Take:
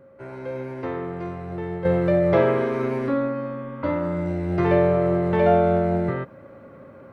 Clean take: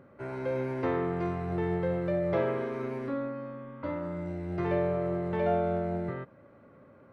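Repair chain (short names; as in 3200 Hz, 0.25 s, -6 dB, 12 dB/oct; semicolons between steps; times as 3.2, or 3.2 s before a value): notch 540 Hz, Q 30; gain correction -10 dB, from 1.85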